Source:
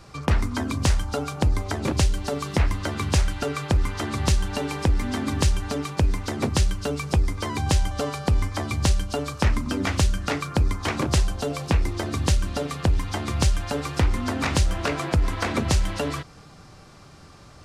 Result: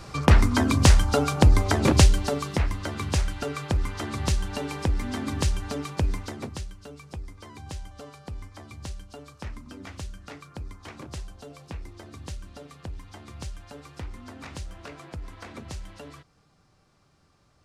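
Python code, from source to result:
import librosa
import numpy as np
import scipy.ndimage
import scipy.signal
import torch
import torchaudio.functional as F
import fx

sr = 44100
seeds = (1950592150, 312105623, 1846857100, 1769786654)

y = fx.gain(x, sr, db=fx.line((2.03, 5.0), (2.62, -4.0), (6.17, -4.0), (6.67, -16.5)))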